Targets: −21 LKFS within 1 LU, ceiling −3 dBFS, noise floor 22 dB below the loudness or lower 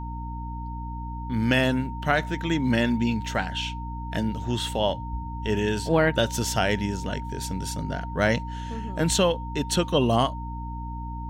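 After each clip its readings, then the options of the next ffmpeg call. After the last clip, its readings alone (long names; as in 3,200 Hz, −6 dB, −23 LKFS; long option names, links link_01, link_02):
mains hum 60 Hz; hum harmonics up to 300 Hz; level of the hum −31 dBFS; interfering tone 920 Hz; level of the tone −37 dBFS; integrated loudness −26.0 LKFS; sample peak −7.0 dBFS; target loudness −21.0 LKFS
→ -af "bandreject=frequency=60:width_type=h:width=6,bandreject=frequency=120:width_type=h:width=6,bandreject=frequency=180:width_type=h:width=6,bandreject=frequency=240:width_type=h:width=6,bandreject=frequency=300:width_type=h:width=6"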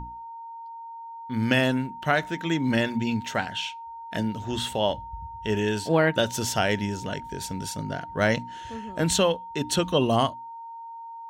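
mains hum none found; interfering tone 920 Hz; level of the tone −37 dBFS
→ -af "bandreject=frequency=920:width=30"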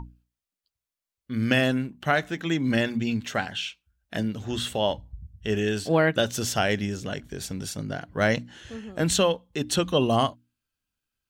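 interfering tone none found; integrated loudness −26.0 LKFS; sample peak −6.5 dBFS; target loudness −21.0 LKFS
→ -af "volume=5dB,alimiter=limit=-3dB:level=0:latency=1"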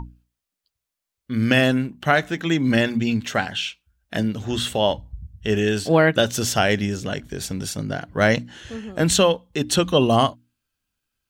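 integrated loudness −21.5 LKFS; sample peak −3.0 dBFS; background noise floor −84 dBFS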